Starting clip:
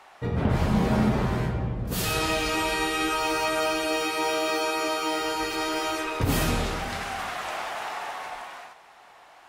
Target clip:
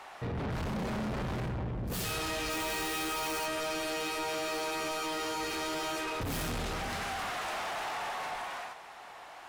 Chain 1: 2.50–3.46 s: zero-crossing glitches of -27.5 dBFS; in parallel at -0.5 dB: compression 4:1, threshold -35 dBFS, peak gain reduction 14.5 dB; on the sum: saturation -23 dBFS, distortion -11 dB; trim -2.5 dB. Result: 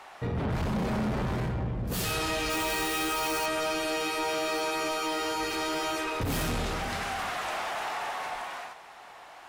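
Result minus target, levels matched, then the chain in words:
saturation: distortion -5 dB
2.50–3.46 s: zero-crossing glitches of -27.5 dBFS; in parallel at -0.5 dB: compression 4:1, threshold -35 dBFS, peak gain reduction 14.5 dB; on the sum: saturation -30 dBFS, distortion -6 dB; trim -2.5 dB

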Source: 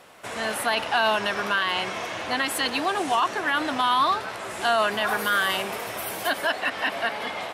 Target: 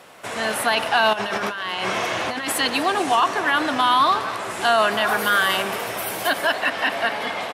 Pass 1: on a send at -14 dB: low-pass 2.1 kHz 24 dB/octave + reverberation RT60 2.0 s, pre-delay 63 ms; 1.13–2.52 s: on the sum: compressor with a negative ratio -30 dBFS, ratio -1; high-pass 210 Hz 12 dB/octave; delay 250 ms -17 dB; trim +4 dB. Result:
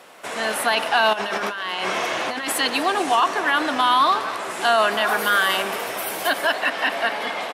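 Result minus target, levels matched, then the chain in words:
125 Hz band -6.0 dB
on a send at -14 dB: low-pass 2.1 kHz 24 dB/octave + reverberation RT60 2.0 s, pre-delay 63 ms; 1.13–2.52 s: on the sum: compressor with a negative ratio -30 dBFS, ratio -1; high-pass 75 Hz 12 dB/octave; delay 250 ms -17 dB; trim +4 dB

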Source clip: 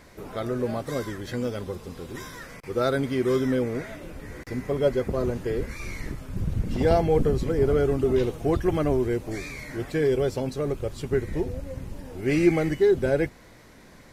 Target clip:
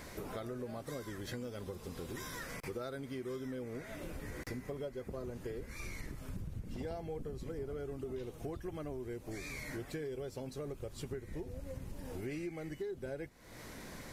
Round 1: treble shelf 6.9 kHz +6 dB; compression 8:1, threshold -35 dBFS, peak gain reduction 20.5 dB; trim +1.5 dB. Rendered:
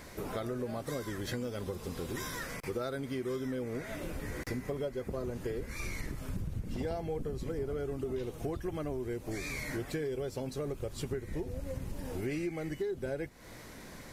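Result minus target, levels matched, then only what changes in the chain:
compression: peak gain reduction -5.5 dB
change: compression 8:1, threshold -41.5 dBFS, peak gain reduction 26 dB

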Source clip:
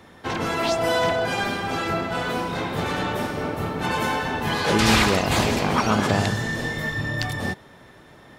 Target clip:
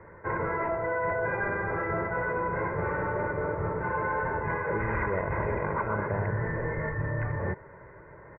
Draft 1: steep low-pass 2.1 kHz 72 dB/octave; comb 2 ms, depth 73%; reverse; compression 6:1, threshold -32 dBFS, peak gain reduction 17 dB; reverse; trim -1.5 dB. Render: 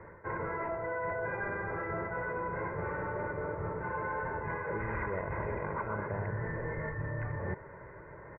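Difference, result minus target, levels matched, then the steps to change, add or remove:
compression: peak gain reduction +6 dB
change: compression 6:1, threshold -24.5 dBFS, peak gain reduction 10.5 dB

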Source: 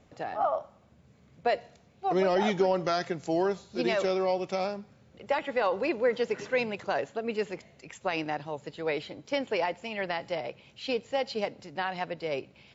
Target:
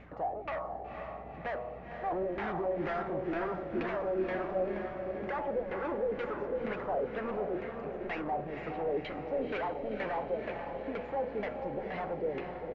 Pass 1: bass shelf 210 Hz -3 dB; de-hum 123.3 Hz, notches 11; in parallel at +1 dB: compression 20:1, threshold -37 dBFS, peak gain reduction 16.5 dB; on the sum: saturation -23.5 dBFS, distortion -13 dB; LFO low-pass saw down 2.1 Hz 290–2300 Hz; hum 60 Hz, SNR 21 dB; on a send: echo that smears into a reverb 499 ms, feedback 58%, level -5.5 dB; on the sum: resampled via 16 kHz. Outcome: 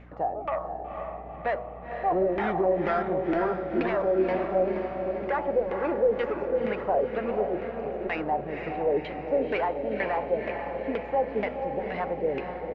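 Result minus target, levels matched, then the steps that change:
saturation: distortion -9 dB
change: saturation -35.5 dBFS, distortion -4 dB

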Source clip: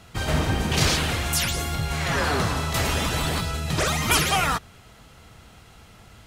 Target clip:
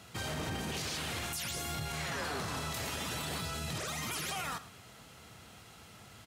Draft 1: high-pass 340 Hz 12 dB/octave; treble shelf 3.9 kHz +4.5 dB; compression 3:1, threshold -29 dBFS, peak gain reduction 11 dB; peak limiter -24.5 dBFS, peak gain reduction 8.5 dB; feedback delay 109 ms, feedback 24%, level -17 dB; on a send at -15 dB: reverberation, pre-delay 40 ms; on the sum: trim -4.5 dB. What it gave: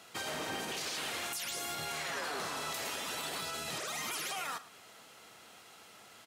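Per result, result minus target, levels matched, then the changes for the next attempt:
125 Hz band -13.0 dB; compression: peak gain reduction +11 dB
change: high-pass 100 Hz 12 dB/octave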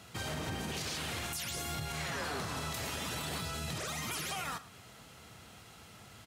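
compression: peak gain reduction +11.5 dB
remove: compression 3:1, threshold -29 dBFS, peak gain reduction 11.5 dB

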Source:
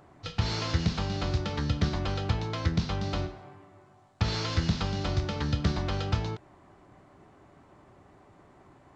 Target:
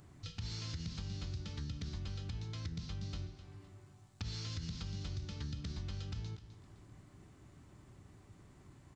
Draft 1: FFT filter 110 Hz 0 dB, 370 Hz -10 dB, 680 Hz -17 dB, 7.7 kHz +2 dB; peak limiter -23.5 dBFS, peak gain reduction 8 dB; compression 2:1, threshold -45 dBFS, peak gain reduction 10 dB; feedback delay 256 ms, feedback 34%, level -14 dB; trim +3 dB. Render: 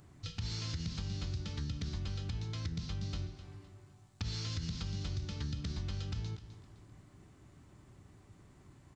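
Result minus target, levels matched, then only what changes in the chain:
compression: peak gain reduction -3.5 dB
change: compression 2:1, threshold -52 dBFS, peak gain reduction 13.5 dB

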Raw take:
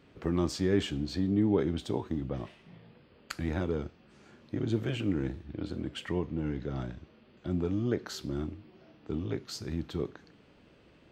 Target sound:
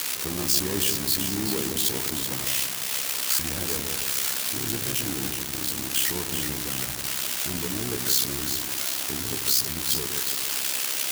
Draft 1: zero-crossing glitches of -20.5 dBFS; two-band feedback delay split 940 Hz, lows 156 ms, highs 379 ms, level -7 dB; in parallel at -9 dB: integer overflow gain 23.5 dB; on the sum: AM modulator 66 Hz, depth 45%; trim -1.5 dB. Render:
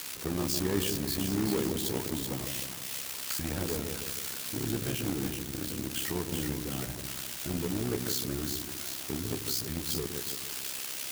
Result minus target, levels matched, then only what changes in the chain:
zero-crossing glitches: distortion -10 dB
change: zero-crossing glitches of -10.5 dBFS

